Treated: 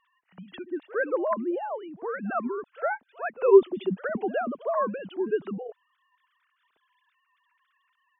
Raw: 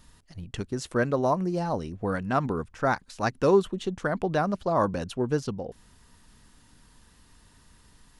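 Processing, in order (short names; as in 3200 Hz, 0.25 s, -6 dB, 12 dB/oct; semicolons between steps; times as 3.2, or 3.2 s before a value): sine-wave speech; reverse echo 59 ms -19 dB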